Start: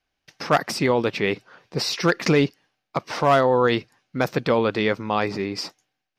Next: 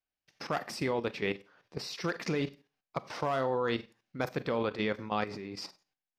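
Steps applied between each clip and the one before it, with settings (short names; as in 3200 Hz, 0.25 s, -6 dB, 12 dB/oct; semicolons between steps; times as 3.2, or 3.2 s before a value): Schroeder reverb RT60 0.32 s, combs from 30 ms, DRR 12 dB; level quantiser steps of 11 dB; gain -8 dB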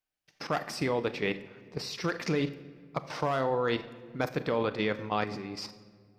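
shoebox room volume 2800 m³, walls mixed, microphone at 0.47 m; gain +2 dB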